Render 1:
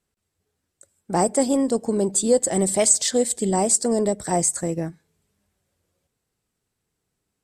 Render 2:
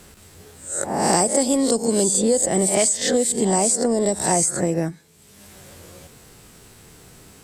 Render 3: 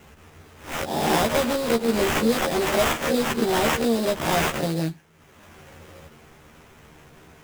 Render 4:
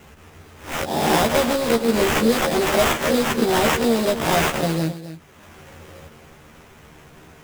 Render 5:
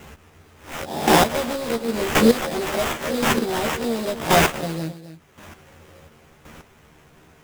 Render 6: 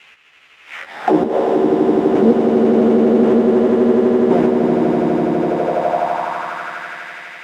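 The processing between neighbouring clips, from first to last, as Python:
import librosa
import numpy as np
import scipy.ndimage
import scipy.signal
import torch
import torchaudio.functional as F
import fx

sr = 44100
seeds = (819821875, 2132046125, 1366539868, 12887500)

y1 = fx.spec_swells(x, sr, rise_s=0.39)
y1 = fx.band_squash(y1, sr, depth_pct=100)
y2 = fx.sample_hold(y1, sr, seeds[0], rate_hz=4400.0, jitter_pct=20)
y2 = fx.doubler(y2, sr, ms=13.0, db=-2.5)
y2 = y2 * librosa.db_to_amplitude(-4.5)
y3 = y2 + 10.0 ** (-13.0 / 20.0) * np.pad(y2, (int(265 * sr / 1000.0), 0))[:len(y2)]
y3 = y3 * librosa.db_to_amplitude(3.0)
y4 = fx.chopper(y3, sr, hz=0.93, depth_pct=65, duty_pct=15)
y4 = y4 * librosa.db_to_amplitude(3.5)
y5 = fx.echo_swell(y4, sr, ms=83, loudest=8, wet_db=-5)
y5 = fx.auto_wah(y5, sr, base_hz=320.0, top_hz=2700.0, q=2.6, full_db=-11.5, direction='down')
y5 = y5 * librosa.db_to_amplitude(8.0)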